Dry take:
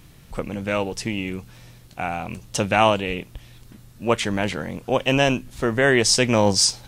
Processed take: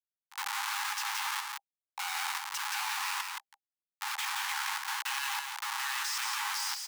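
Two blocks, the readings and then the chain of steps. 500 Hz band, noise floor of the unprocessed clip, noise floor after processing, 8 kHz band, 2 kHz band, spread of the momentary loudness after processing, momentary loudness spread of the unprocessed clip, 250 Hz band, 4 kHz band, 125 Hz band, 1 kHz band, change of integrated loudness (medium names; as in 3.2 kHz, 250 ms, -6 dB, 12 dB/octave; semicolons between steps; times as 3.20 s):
under -40 dB, -48 dBFS, under -85 dBFS, -10.0 dB, -8.5 dB, 8 LU, 15 LU, under -40 dB, -9.0 dB, under -40 dB, -9.5 dB, -11.5 dB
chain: Schmitt trigger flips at -33 dBFS; Chebyshev high-pass 800 Hz, order 10; level held to a coarse grid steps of 19 dB; on a send: delay 172 ms -4 dB; on the sum: trim +2.5 dB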